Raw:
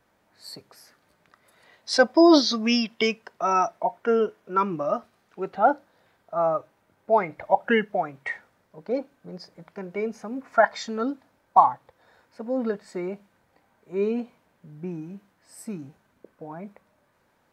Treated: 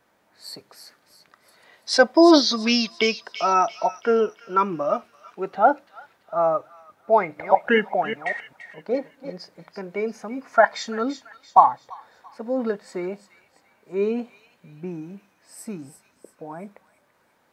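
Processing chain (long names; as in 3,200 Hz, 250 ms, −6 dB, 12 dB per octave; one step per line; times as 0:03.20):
0:07.15–0:09.30: delay that plays each chunk backwards 197 ms, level −9 dB
low-shelf EQ 120 Hz −11 dB
delay with a high-pass on its return 338 ms, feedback 40%, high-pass 2,400 Hz, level −9.5 dB
level +3 dB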